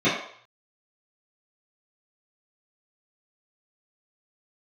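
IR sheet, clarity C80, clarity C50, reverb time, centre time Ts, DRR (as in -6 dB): 7.0 dB, 3.5 dB, 0.60 s, 45 ms, -13.0 dB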